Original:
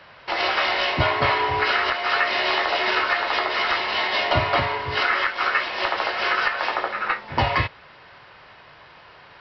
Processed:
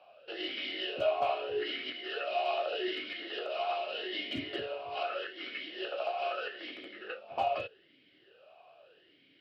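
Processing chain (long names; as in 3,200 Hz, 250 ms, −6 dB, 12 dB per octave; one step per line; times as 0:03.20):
flat-topped bell 1,500 Hz −9.5 dB 1.3 octaves
in parallel at −9 dB: wrap-around overflow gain 13.5 dB
on the sum: formant filter swept between two vowels a-i 0.81 Hz
level −1.5 dB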